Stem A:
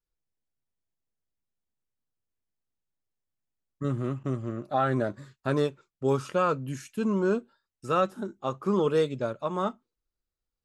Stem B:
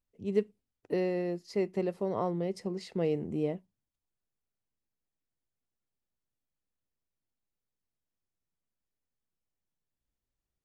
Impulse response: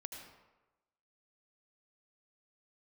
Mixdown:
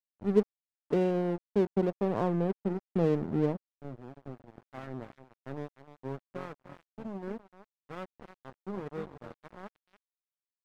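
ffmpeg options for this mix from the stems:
-filter_complex "[0:a]lowpass=f=1.3k:p=1,volume=-13.5dB,asplit=2[a][b];[b]volume=-7.5dB[c];[1:a]afwtdn=0.00708,volume=0.5dB[d];[c]aecho=0:1:298:1[e];[a][d][e]amix=inputs=3:normalize=0,equalizer=f=160:t=o:w=2.8:g=7,aeval=exprs='sgn(val(0))*max(abs(val(0))-0.0141,0)':c=same,adynamicequalizer=threshold=0.00316:dfrequency=2200:dqfactor=0.7:tfrequency=2200:tqfactor=0.7:attack=5:release=100:ratio=0.375:range=2:mode=cutabove:tftype=highshelf"

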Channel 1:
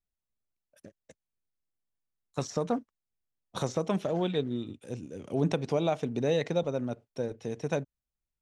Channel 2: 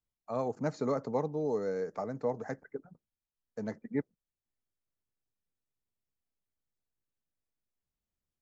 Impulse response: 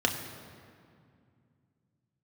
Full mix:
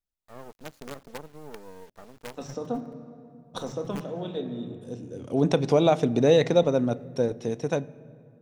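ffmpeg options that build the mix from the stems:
-filter_complex "[0:a]bandreject=f=3.1k:w=23,dynaudnorm=f=250:g=9:m=10.5dB,volume=-3dB,asplit=2[a][b];[b]volume=-23.5dB[c];[1:a]acrusher=bits=5:dc=4:mix=0:aa=0.000001,volume=-8dB,asplit=2[d][e];[e]apad=whole_len=371031[f];[a][f]sidechaincompress=threshold=-59dB:ratio=8:attack=7.1:release=893[g];[2:a]atrim=start_sample=2205[h];[c][h]afir=irnorm=-1:irlink=0[i];[g][d][i]amix=inputs=3:normalize=0"

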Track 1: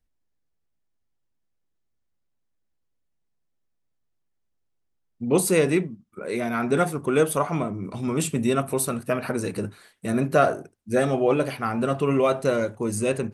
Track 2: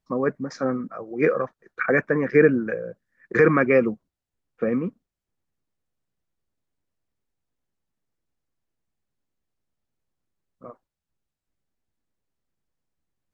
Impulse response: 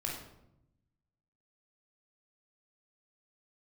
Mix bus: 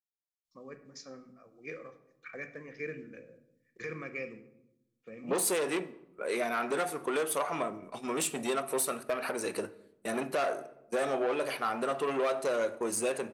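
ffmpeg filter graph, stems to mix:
-filter_complex "[0:a]asoftclip=type=tanh:threshold=-20dB,highpass=430,agate=range=-22dB:threshold=-40dB:ratio=16:detection=peak,volume=-0.5dB,asplit=3[a][b][c];[b]volume=-15dB[d];[1:a]aexciter=amount=6.1:drive=6.7:freq=2.3k,adelay=450,volume=-15dB,asplit=2[e][f];[f]volume=-18.5dB[g];[c]apad=whole_len=607895[h];[e][h]sidechaingate=range=-12dB:threshold=-41dB:ratio=16:detection=peak[i];[2:a]atrim=start_sample=2205[j];[d][g]amix=inputs=2:normalize=0[k];[k][j]afir=irnorm=-1:irlink=0[l];[a][i][l]amix=inputs=3:normalize=0,alimiter=limit=-20.5dB:level=0:latency=1:release=216"

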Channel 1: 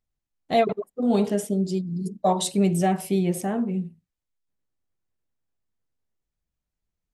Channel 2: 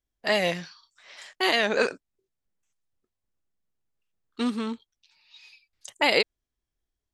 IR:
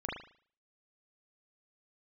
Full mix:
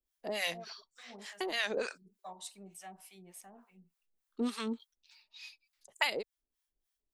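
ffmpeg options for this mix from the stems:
-filter_complex "[0:a]lowshelf=f=680:t=q:w=1.5:g=-11,volume=-15dB,asplit=2[a][b];[1:a]highshelf=f=2.9k:g=6,aexciter=amount=1.5:drive=3.2:freq=10k,volume=0.5dB[c];[b]apad=whole_len=314435[d];[c][d]sidechaincompress=threshold=-45dB:ratio=8:attack=16:release=103[e];[a][e]amix=inputs=2:normalize=0,equalizer=f=95:t=o:w=1.4:g=-14,acrossover=split=120[f][g];[g]acompressor=threshold=-25dB:ratio=10[h];[f][h]amix=inputs=2:normalize=0,acrossover=split=690[i][j];[i]aeval=exprs='val(0)*(1-1/2+1/2*cos(2*PI*3.4*n/s))':c=same[k];[j]aeval=exprs='val(0)*(1-1/2-1/2*cos(2*PI*3.4*n/s))':c=same[l];[k][l]amix=inputs=2:normalize=0"

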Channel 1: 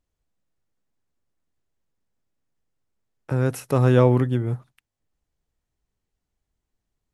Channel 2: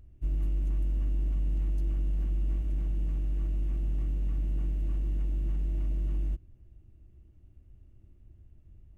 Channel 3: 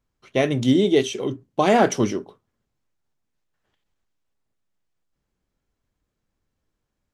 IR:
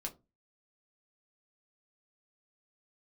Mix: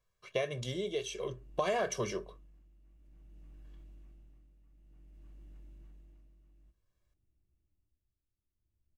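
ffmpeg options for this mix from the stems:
-filter_complex "[1:a]adelay=350,volume=-18.5dB,asplit=2[a][b];[b]volume=-5.5dB[c];[2:a]aecho=1:1:1.8:0.92,volume=-4.5dB,asplit=2[d][e];[e]volume=-10dB[f];[3:a]atrim=start_sample=2205[g];[c][f]amix=inputs=2:normalize=0[h];[h][g]afir=irnorm=-1:irlink=0[i];[a][d][i]amix=inputs=3:normalize=0,lowshelf=f=450:g=-6.5,tremolo=f=0.54:d=0.73,acompressor=threshold=-30dB:ratio=5"

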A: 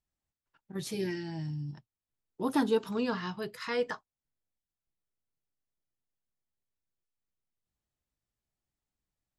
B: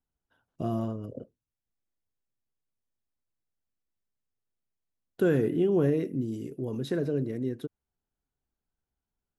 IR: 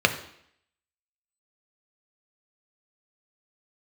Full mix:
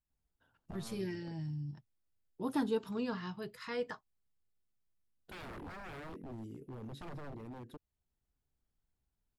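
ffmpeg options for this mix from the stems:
-filter_complex "[0:a]volume=-7.5dB,asplit=2[a][b];[1:a]aeval=exprs='0.0316*(abs(mod(val(0)/0.0316+3,4)-2)-1)':c=same,alimiter=level_in=16dB:limit=-24dB:level=0:latency=1:release=479,volume=-16dB,adelay=100,volume=-3.5dB[c];[b]apad=whole_len=418385[d];[c][d]sidechaincompress=threshold=-45dB:ratio=8:attack=7.4:release=252[e];[a][e]amix=inputs=2:normalize=0,lowshelf=f=180:g=7.5,equalizer=f=6.1k:w=7.6:g=-4"

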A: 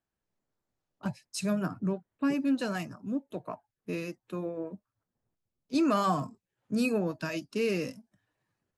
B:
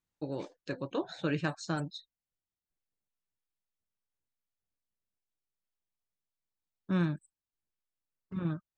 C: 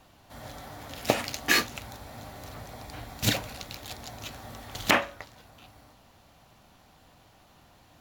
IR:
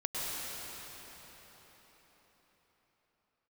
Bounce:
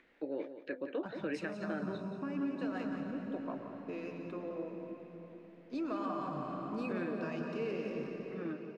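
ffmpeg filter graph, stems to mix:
-filter_complex "[0:a]lowpass=f=2.6k:p=1,flanger=delay=1.7:depth=8.5:regen=-90:speed=1.5:shape=triangular,volume=3dB,asplit=3[a][b][c];[b]volume=-13.5dB[d];[c]volume=-11dB[e];[1:a]acrossover=split=350 2400:gain=0.178 1 0.0891[f][g][h];[f][g][h]amix=inputs=3:normalize=0,acompressor=mode=upward:threshold=-46dB:ratio=2.5,equalizer=f=125:t=o:w=1:g=-9,equalizer=f=250:t=o:w=1:g=10,equalizer=f=500:t=o:w=1:g=5,equalizer=f=1k:t=o:w=1:g=-10,equalizer=f=2k:t=o:w=1:g=10,equalizer=f=4k:t=o:w=1:g=5,volume=-2.5dB,asplit=2[i][j];[j]volume=-11.5dB[k];[a]highpass=260,acompressor=threshold=-43dB:ratio=3,volume=0dB[l];[3:a]atrim=start_sample=2205[m];[d][m]afir=irnorm=-1:irlink=0[n];[e][k]amix=inputs=2:normalize=0,aecho=0:1:177|354|531|708:1|0.23|0.0529|0.0122[o];[i][l][n][o]amix=inputs=4:normalize=0,aemphasis=mode=reproduction:type=50fm,alimiter=level_in=3.5dB:limit=-24dB:level=0:latency=1:release=167,volume=-3.5dB"

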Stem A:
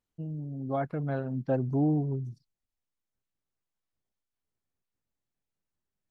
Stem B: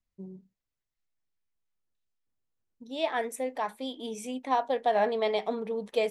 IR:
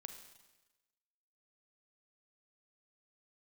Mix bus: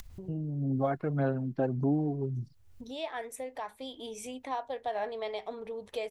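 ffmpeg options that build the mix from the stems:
-filter_complex "[0:a]bass=f=250:g=4,treble=f=4k:g=-4,acrossover=split=180[a][b];[a]acompressor=threshold=-41dB:ratio=6[c];[c][b]amix=inputs=2:normalize=0,aphaser=in_gain=1:out_gain=1:delay=2.9:decay=0.36:speed=1.7:type=sinusoidal,adelay=100,volume=2.5dB[d];[1:a]lowshelf=f=130:t=q:w=3:g=12,acompressor=mode=upward:threshold=-44dB:ratio=2.5,volume=-8dB[e];[d][e]amix=inputs=2:normalize=0,acompressor=mode=upward:threshold=-33dB:ratio=2.5,alimiter=limit=-19.5dB:level=0:latency=1:release=460"

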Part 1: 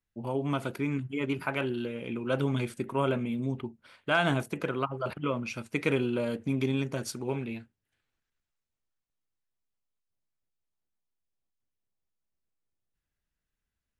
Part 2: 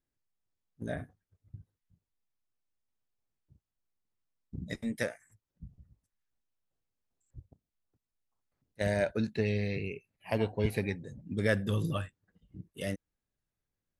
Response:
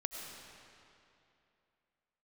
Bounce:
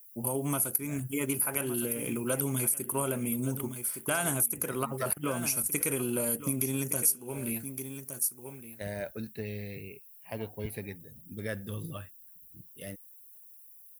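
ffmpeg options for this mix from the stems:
-filter_complex "[0:a]aexciter=amount=14:drive=4.1:freq=5.6k,volume=1.5dB,asplit=2[a][b];[b]volume=-14.5dB[c];[1:a]volume=-7.5dB[d];[c]aecho=0:1:1165:1[e];[a][d][e]amix=inputs=3:normalize=0,aexciter=amount=7.8:drive=1.5:freq=9.8k,acompressor=threshold=-27dB:ratio=4"

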